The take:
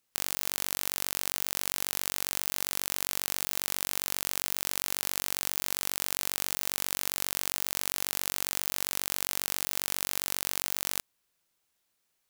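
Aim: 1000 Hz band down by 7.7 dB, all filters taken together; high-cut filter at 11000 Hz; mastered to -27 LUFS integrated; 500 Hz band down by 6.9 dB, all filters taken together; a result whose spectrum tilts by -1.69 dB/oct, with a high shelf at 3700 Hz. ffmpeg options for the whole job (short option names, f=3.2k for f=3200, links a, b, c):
-af "lowpass=11k,equalizer=f=500:t=o:g=-6.5,equalizer=f=1k:t=o:g=-7.5,highshelf=f=3.7k:g=-8.5,volume=12.5dB"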